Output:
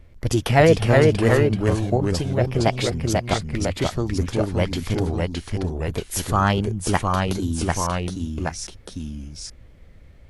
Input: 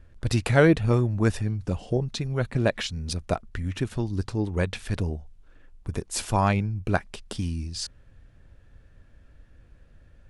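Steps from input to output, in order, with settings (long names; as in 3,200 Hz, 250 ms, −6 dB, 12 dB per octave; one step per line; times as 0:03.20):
delay with pitch and tempo change per echo 334 ms, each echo −1 semitone, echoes 2
formants moved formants +4 semitones
level +3 dB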